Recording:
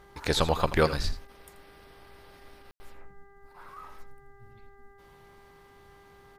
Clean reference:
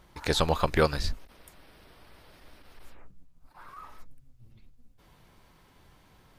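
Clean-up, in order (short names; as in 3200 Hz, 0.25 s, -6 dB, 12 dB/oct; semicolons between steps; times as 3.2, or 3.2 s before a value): de-hum 398.5 Hz, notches 5; room tone fill 2.71–2.8; inverse comb 83 ms -14 dB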